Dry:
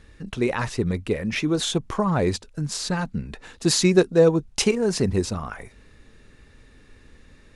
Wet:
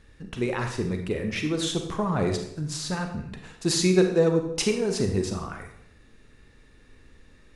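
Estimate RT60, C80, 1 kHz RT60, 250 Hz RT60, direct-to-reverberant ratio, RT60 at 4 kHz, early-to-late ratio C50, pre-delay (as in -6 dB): 0.70 s, 9.5 dB, 0.70 s, 0.75 s, 4.5 dB, 0.60 s, 6.5 dB, 31 ms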